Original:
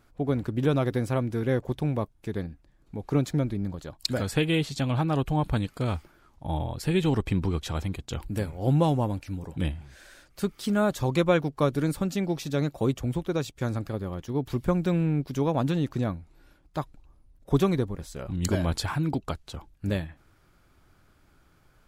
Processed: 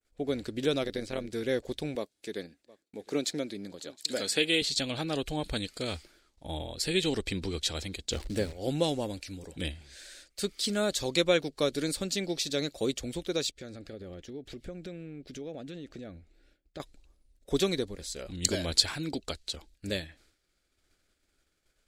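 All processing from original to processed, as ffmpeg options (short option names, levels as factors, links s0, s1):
-filter_complex "[0:a]asettb=1/sr,asplit=3[s0][s1][s2];[s0]atrim=end=0.834[s3];[s1]atrim=start=0.83:end=1.33,asetpts=PTS-STARTPTS,afade=t=in:d=0.004:c=qsin,afade=t=out:st=0.496:d=0.004:c=qsin,acrossover=split=5400[s4][s5];[s5]acompressor=threshold=0.00158:ratio=4:attack=1:release=60[s6];[s4][s6]amix=inputs=2:normalize=0,tremolo=f=92:d=0.667[s7];[s2]atrim=start=1.326[s8];[s3][s7]acrossfade=d=0.004:c1=hsin:c2=qsin[s9];[s9][s8]acrossfade=d=0.004:c1=qsin:c2=hsin,asettb=1/sr,asplit=3[s10][s11][s12];[s10]atrim=end=1.954[s13];[s11]atrim=start=1.95:end=4.62,asetpts=PTS-STARTPTS,afade=t=in:d=0.004:c=qsin,afade=t=out:st=2.666:d=0.004:c=qsin,deesser=0.6,highpass=200,aecho=1:1:714:0.0794,atrim=end_sample=117747[s14];[s12]atrim=start=4.616[s15];[s13][s14]acrossfade=d=0.004:c1=hsin:c2=qsin[s16];[s16][s15]acrossfade=d=0.004:c1=qsin:c2=hsin,asettb=1/sr,asplit=3[s17][s18][s19];[s17]atrim=end=8.114[s20];[s18]atrim=start=8.11:end=8.53,asetpts=PTS-STARTPTS,afade=t=in:d=0.004:c=qsin,afade=t=out:st=0.416:d=0.004:c=qsin,acontrast=41,acrusher=bits=8:dc=4:mix=0:aa=0.000001,highshelf=f=2200:g=-11[s21];[s19]atrim=start=8.526[s22];[s20][s21]acrossfade=d=0.004:c1=hsin:c2=qsin[s23];[s23][s22]acrossfade=d=0.004:c1=qsin:c2=hsin,asettb=1/sr,asplit=3[s24][s25][s26];[s24]atrim=end=13.514[s27];[s25]atrim=start=13.51:end=16.8,asetpts=PTS-STARTPTS,afade=t=in:d=0.004:c=qsin,afade=t=out:st=3.286:d=0.004:c=qsin,lowpass=f=2200:p=1,equalizer=f=1000:w=4.5:g=-11,acompressor=threshold=0.0282:ratio=6:attack=3.2:release=140:knee=1:detection=peak[s28];[s26]atrim=start=16.796[s29];[s27][s28]acrossfade=d=0.004:c1=hsin:c2=qsin[s30];[s30][s29]acrossfade=d=0.004:c1=qsin:c2=hsin,adynamicequalizer=threshold=0.00178:dfrequency=4400:dqfactor=2.2:tfrequency=4400:tqfactor=2.2:attack=5:release=100:ratio=0.375:range=3:mode=boostabove:tftype=bell,agate=range=0.0224:threshold=0.00251:ratio=3:detection=peak,equalizer=f=125:t=o:w=1:g=-11,equalizer=f=500:t=o:w=1:g=5,equalizer=f=1000:t=o:w=1:g=-9,equalizer=f=2000:t=o:w=1:g=5,equalizer=f=4000:t=o:w=1:g=7,equalizer=f=8000:t=o:w=1:g=11,volume=0.596"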